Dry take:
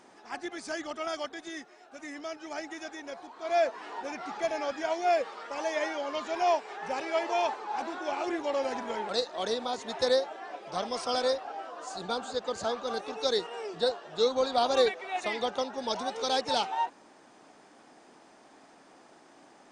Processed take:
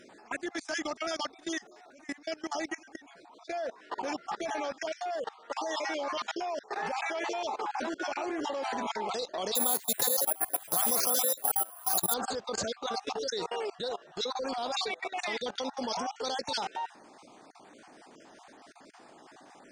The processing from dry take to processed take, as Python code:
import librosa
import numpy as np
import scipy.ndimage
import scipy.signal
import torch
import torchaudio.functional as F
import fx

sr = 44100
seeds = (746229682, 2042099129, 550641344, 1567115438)

y = fx.spec_dropout(x, sr, seeds[0], share_pct=30)
y = fx.level_steps(y, sr, step_db=21)
y = fx.resample_bad(y, sr, factor=4, down='filtered', up='zero_stuff', at=(9.55, 12.14))
y = fx.dynamic_eq(y, sr, hz=5400.0, q=1.0, threshold_db=-56.0, ratio=4.0, max_db=4)
y = y * 10.0 ** (8.5 / 20.0)